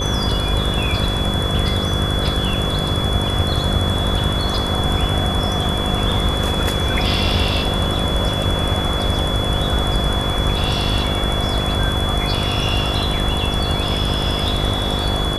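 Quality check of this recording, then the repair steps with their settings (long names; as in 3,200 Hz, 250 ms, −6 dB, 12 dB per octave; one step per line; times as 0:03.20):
mains buzz 50 Hz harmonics 11 −24 dBFS
whistle 3,400 Hz −24 dBFS
0:08.43: drop-out 2.1 ms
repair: notch filter 3,400 Hz, Q 30
hum removal 50 Hz, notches 11
repair the gap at 0:08.43, 2.1 ms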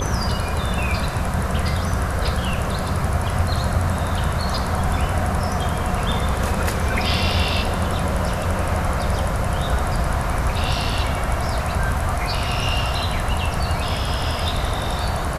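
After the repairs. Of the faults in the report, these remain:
none of them is left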